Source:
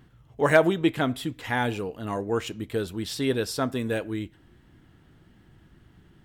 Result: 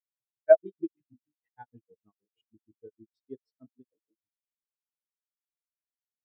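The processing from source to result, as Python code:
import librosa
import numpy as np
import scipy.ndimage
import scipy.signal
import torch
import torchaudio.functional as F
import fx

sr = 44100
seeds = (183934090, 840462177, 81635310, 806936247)

y = fx.hum_notches(x, sr, base_hz=50, count=9)
y = fx.granulator(y, sr, seeds[0], grain_ms=100.0, per_s=6.4, spray_ms=100.0, spread_st=0)
y = fx.spectral_expand(y, sr, expansion=2.5)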